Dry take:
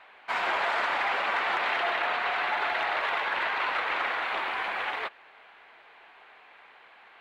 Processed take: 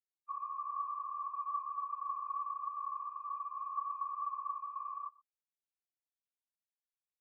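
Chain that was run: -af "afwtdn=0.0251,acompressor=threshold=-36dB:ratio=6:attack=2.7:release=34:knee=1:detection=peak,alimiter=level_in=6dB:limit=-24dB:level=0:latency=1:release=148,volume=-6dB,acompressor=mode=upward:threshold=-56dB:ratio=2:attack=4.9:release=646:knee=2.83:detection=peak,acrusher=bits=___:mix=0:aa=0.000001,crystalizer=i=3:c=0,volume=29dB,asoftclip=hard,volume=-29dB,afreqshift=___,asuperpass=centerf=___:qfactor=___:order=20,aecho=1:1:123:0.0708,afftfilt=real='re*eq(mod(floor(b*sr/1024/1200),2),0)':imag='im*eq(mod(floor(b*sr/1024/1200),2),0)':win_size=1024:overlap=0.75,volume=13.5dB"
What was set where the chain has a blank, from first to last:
6, -180, 1500, 1.6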